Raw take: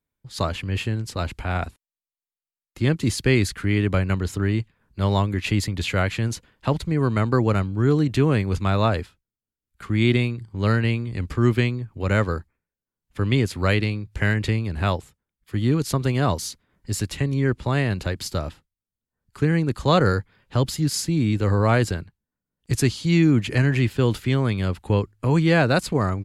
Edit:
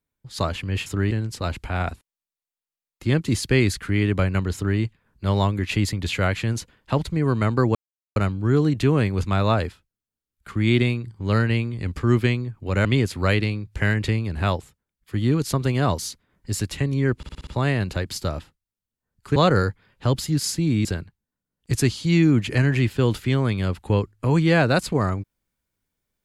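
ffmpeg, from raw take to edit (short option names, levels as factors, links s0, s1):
-filter_complex "[0:a]asplit=12[s0][s1][s2][s3][s4][s5][s6][s7][s8][s9][s10][s11];[s0]atrim=end=0.862[s12];[s1]atrim=start=4.288:end=4.542[s13];[s2]atrim=start=0.858:end=7.5,asetpts=PTS-STARTPTS,afade=t=out:st=6.638:d=0.004:c=hsin,apad=pad_dur=0.41[s14];[s3]atrim=start=7.5:end=12.192,asetpts=PTS-STARTPTS,afade=t=in:d=0.004:c=hsin[s15];[s4]atrim=start=13.248:end=17.632[s16];[s5]atrim=start=17.568:end=17.632[s17];[s6]atrim=start=17.568:end=17.632[s18];[s7]atrim=start=17.568:end=17.632[s19];[s8]atrim=start=17.568:end=17.632[s20];[s9]atrim=start=17.568:end=19.462[s21];[s10]atrim=start=19.858:end=21.352[s22];[s11]atrim=start=21.848[s23];[s12][s13]acrossfade=d=0.004:c1=hsin:c2=hsin[s24];[s14][s15]concat=n=2:v=0:a=1[s25];[s24][s25]acrossfade=d=0.004:c1=hsin:c2=hsin[s26];[s26][s16]acrossfade=d=0.004:c1=hsin:c2=hsin[s27];[s27][s17]acrossfade=d=0.004:c1=hsin:c2=hsin[s28];[s28][s18]acrossfade=d=0.004:c1=hsin:c2=hsin[s29];[s29][s19]acrossfade=d=0.004:c1=hsin:c2=hsin[s30];[s30][s20]acrossfade=d=0.004:c1=hsin:c2=hsin[s31];[s31][s21]acrossfade=d=0.004:c1=hsin:c2=hsin[s32];[s32][s22]acrossfade=d=0.004:c1=hsin:c2=hsin[s33];[s33][s23]acrossfade=d=0.004:c1=hsin:c2=hsin"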